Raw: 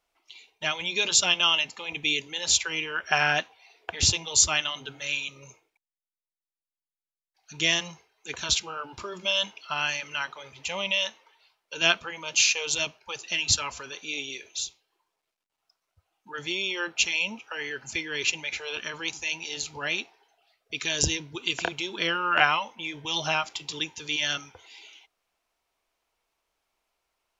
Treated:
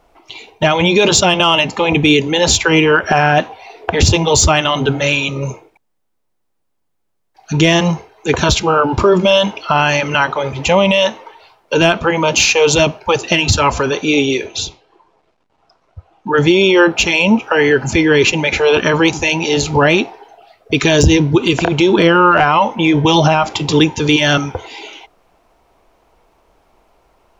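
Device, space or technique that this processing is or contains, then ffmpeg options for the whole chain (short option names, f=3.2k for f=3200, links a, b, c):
mastering chain: -filter_complex "[0:a]equalizer=f=850:t=o:w=0.77:g=2,acompressor=threshold=-29dB:ratio=1.5,asoftclip=type=tanh:threshold=-12.5dB,tiltshelf=f=1.2k:g=9.5,alimiter=level_in=22.5dB:limit=-1dB:release=50:level=0:latency=1,asettb=1/sr,asplit=3[a][b][c];[a]atrim=end=14.464[d];[b]atrim=start=14.46:end=16.32,asetpts=PTS-STARTPTS,afade=t=in:d=0.004:c=qsin,afade=t=out:st=1.856:d=0.004:c=qsin,lowpass=5.7k[e];[c]atrim=start=16.316[f];[d][e]acrossfade=d=0.004:c1=hsin:c2=qsin[g];[g][f]acrossfade=d=0.004:c1=qsin:c2=hsin,volume=-1dB"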